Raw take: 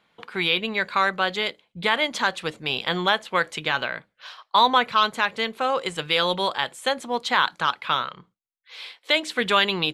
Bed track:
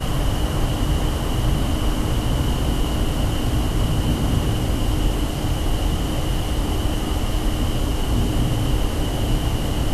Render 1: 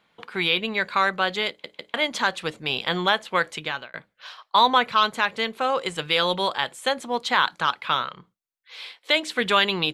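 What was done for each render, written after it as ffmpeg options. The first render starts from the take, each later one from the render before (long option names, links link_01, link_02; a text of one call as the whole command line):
ffmpeg -i in.wav -filter_complex "[0:a]asplit=5[link_01][link_02][link_03][link_04][link_05];[link_01]atrim=end=1.642[link_06];[link_02]atrim=start=1.488:end=1.642[link_07];[link_03]atrim=start=1.488:end=1.642[link_08];[link_04]atrim=start=1.938:end=3.94,asetpts=PTS-STARTPTS,afade=type=out:start_time=1.402:duration=0.6:curve=qsin[link_09];[link_05]atrim=start=3.94,asetpts=PTS-STARTPTS,afade=type=in:duration=0.004:curve=hsin[link_10];[link_06][link_07]acrossfade=duration=0.004:curve1=hsin:curve2=hsin[link_11];[link_11][link_08]acrossfade=duration=0.004:curve1=hsin:curve2=hsin[link_12];[link_09][link_10]concat=n=2:v=0:a=1[link_13];[link_12][link_13]acrossfade=duration=0.004:curve1=hsin:curve2=hsin" out.wav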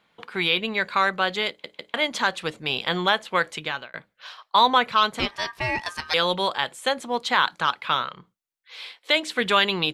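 ffmpeg -i in.wav -filter_complex "[0:a]asettb=1/sr,asplit=3[link_01][link_02][link_03];[link_01]atrim=end=5.194[link_04];[link_02]atrim=start=5.19:end=6.14,asetpts=PTS-STARTPTS,afade=type=in:duration=0.004:curve=qsin,afade=type=out:start_time=0.946:duration=0.004:curve=qsin,aeval=exprs='val(0)*sin(2*PI*1400*n/s)':channel_layout=same[link_05];[link_03]atrim=start=6.136[link_06];[link_04][link_05]acrossfade=duration=0.004:curve1=hsin:curve2=qsin[link_07];[link_07][link_06]acrossfade=duration=0.004:curve1=qsin:curve2=hsin" out.wav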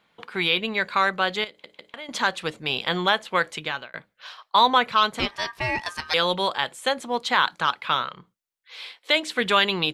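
ffmpeg -i in.wav -filter_complex "[0:a]asettb=1/sr,asplit=3[link_01][link_02][link_03];[link_01]atrim=end=1.444[link_04];[link_02]atrim=start=1.44:end=2.09,asetpts=PTS-STARTPTS,afade=type=in:duration=0.004:curve=qsin,afade=type=out:start_time=0.646:duration=0.004:curve=qsin,acompressor=threshold=-39dB:ratio=3:attack=3.2:release=140:knee=1:detection=peak[link_05];[link_03]atrim=start=2.086[link_06];[link_04][link_05]acrossfade=duration=0.004:curve1=hsin:curve2=qsin[link_07];[link_07][link_06]acrossfade=duration=0.004:curve1=qsin:curve2=hsin" out.wav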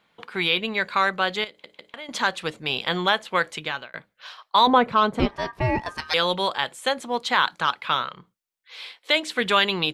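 ffmpeg -i in.wav -filter_complex "[0:a]asettb=1/sr,asplit=3[link_01][link_02][link_03];[link_01]atrim=end=4.674[link_04];[link_02]atrim=start=4.67:end=5.98,asetpts=PTS-STARTPTS,afade=type=in:duration=0.004:curve=qsin,afade=type=out:start_time=1.306:duration=0.004:curve=qsin,tiltshelf=frequency=1200:gain=9.5[link_05];[link_03]atrim=start=5.976[link_06];[link_04][link_05]acrossfade=duration=0.004:curve1=hsin:curve2=qsin[link_07];[link_07][link_06]acrossfade=duration=0.004:curve1=qsin:curve2=hsin" out.wav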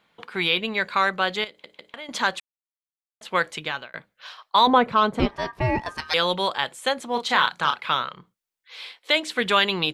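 ffmpeg -i in.wav -filter_complex "[0:a]asettb=1/sr,asplit=3[link_01][link_02][link_03];[link_01]atrim=end=7.124[link_04];[link_02]atrim=start=7.12:end=7.91,asetpts=PTS-STARTPTS,afade=type=in:duration=0.004:curve=qsin,afade=type=out:start_time=0.786:duration=0.004:curve=qsin,asplit=2[link_05][link_06];[link_06]adelay=34,volume=-6.5dB[link_07];[link_05][link_07]amix=inputs=2:normalize=0,atrim=end_sample=34839[link_08];[link_03]atrim=start=7.906[link_09];[link_04][link_08]acrossfade=duration=0.004:curve1=hsin:curve2=qsin[link_10];[link_10][link_09]acrossfade=duration=0.004:curve1=qsin:curve2=hsin,asplit=3[link_11][link_12][link_13];[link_11]atrim=end=2.4,asetpts=PTS-STARTPTS,afade=type=out:start_time=2.396:duration=0.004:curve=hsin[link_14];[link_12]atrim=start=2.4:end=3.21,asetpts=PTS-STARTPTS,volume=0[link_15];[link_13]atrim=start=3.21,asetpts=PTS-STARTPTS,afade=type=in:duration=0.004:curve=hsin[link_16];[link_14][link_15][link_16]concat=n=3:v=0:a=1" out.wav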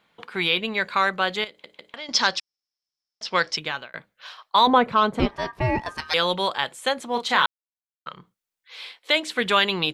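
ffmpeg -i in.wav -filter_complex "[0:a]asettb=1/sr,asplit=3[link_01][link_02][link_03];[link_01]atrim=end=1.964[link_04];[link_02]atrim=start=1.96:end=3.57,asetpts=PTS-STARTPTS,afade=type=in:duration=0.004:curve=qsin,afade=type=out:start_time=1.606:duration=0.004:curve=qsin,lowpass=frequency=5300:width_type=q:width=15[link_05];[link_03]atrim=start=3.566[link_06];[link_04][link_05]acrossfade=duration=0.004:curve1=hsin:curve2=qsin[link_07];[link_07][link_06]acrossfade=duration=0.004:curve1=qsin:curve2=hsin,asplit=3[link_08][link_09][link_10];[link_08]atrim=end=7.46,asetpts=PTS-STARTPTS,afade=type=out:start_time=7.456:duration=0.004:curve=hsin[link_11];[link_09]atrim=start=7.46:end=8.06,asetpts=PTS-STARTPTS,volume=0[link_12];[link_10]atrim=start=8.06,asetpts=PTS-STARTPTS,afade=type=in:duration=0.004:curve=hsin[link_13];[link_11][link_12][link_13]concat=n=3:v=0:a=1" out.wav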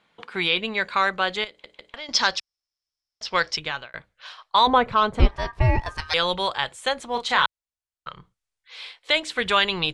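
ffmpeg -i in.wav -af "asubboost=boost=9:cutoff=73,lowpass=frequency=9900:width=0.5412,lowpass=frequency=9900:width=1.3066" out.wav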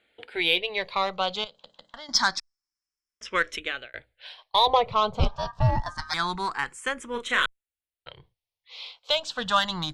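ffmpeg -i in.wav -filter_complex "[0:a]aeval=exprs='0.708*(cos(1*acos(clip(val(0)/0.708,-1,1)))-cos(1*PI/2))+0.0794*(cos(4*acos(clip(val(0)/0.708,-1,1)))-cos(4*PI/2))+0.0631*(cos(6*acos(clip(val(0)/0.708,-1,1)))-cos(6*PI/2))':channel_layout=same,asplit=2[link_01][link_02];[link_02]afreqshift=0.26[link_03];[link_01][link_03]amix=inputs=2:normalize=1" out.wav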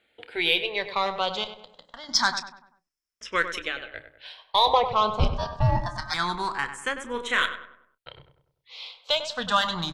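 ffmpeg -i in.wav -filter_complex "[0:a]asplit=2[link_01][link_02];[link_02]adelay=29,volume=-14dB[link_03];[link_01][link_03]amix=inputs=2:normalize=0,asplit=2[link_04][link_05];[link_05]adelay=98,lowpass=frequency=1900:poles=1,volume=-9dB,asplit=2[link_06][link_07];[link_07]adelay=98,lowpass=frequency=1900:poles=1,volume=0.46,asplit=2[link_08][link_09];[link_09]adelay=98,lowpass=frequency=1900:poles=1,volume=0.46,asplit=2[link_10][link_11];[link_11]adelay=98,lowpass=frequency=1900:poles=1,volume=0.46,asplit=2[link_12][link_13];[link_13]adelay=98,lowpass=frequency=1900:poles=1,volume=0.46[link_14];[link_04][link_06][link_08][link_10][link_12][link_14]amix=inputs=6:normalize=0" out.wav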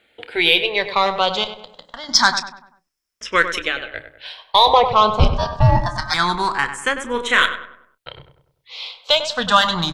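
ffmpeg -i in.wav -af "volume=8.5dB,alimiter=limit=-1dB:level=0:latency=1" out.wav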